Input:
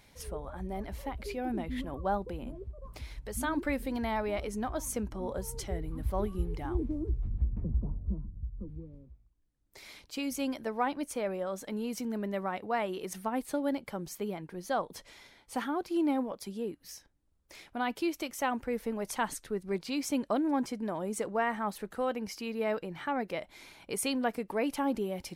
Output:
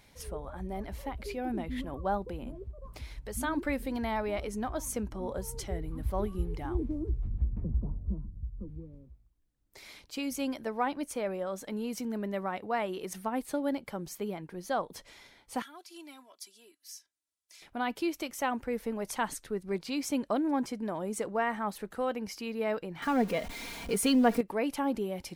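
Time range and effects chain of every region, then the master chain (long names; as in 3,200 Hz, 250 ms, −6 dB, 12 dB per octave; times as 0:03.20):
0:15.62–0:17.62: resonant band-pass 7,800 Hz, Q 0.72 + comb filter 3 ms, depth 75%
0:23.02–0:24.41: converter with a step at zero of −41 dBFS + low-shelf EQ 390 Hz +6 dB + comb filter 4.3 ms, depth 56%
whole clip: no processing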